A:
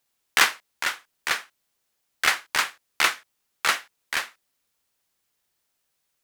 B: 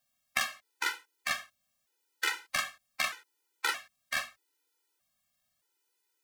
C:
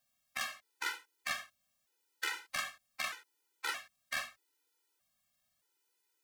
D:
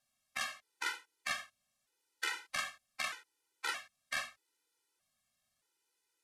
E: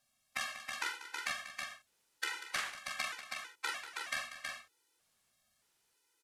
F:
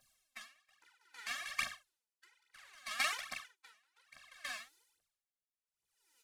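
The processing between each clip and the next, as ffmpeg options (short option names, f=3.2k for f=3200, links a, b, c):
-af "acompressor=threshold=-23dB:ratio=12,bandreject=f=50:t=h:w=6,bandreject=f=100:t=h:w=6,afftfilt=real='re*gt(sin(2*PI*0.8*pts/sr)*(1-2*mod(floor(b*sr/1024/260),2)),0)':imag='im*gt(sin(2*PI*0.8*pts/sr)*(1-2*mod(floor(b*sr/1024/260),2)),0)':win_size=1024:overlap=0.75"
-af "alimiter=limit=-22.5dB:level=0:latency=1:release=90,volume=-1dB"
-af "lowpass=f=12k:w=0.5412,lowpass=f=12k:w=1.3066"
-filter_complex "[0:a]acompressor=threshold=-38dB:ratio=6,asplit=2[a][b];[b]aecho=0:1:190|322:0.237|0.596[c];[a][c]amix=inputs=2:normalize=0,volume=4dB"
-af "equalizer=f=300:w=0.32:g=-4,aphaser=in_gain=1:out_gain=1:delay=4.9:decay=0.74:speed=1.2:type=triangular,aeval=exprs='val(0)*pow(10,-35*(0.5-0.5*cos(2*PI*0.64*n/s))/20)':c=same,volume=2.5dB"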